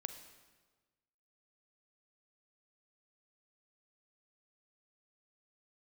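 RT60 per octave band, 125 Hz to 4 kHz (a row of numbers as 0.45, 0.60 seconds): 1.6, 1.4, 1.4, 1.3, 1.2, 1.1 seconds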